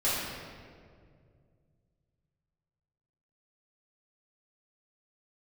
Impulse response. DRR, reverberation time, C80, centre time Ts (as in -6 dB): -11.0 dB, 2.1 s, 0.5 dB, 117 ms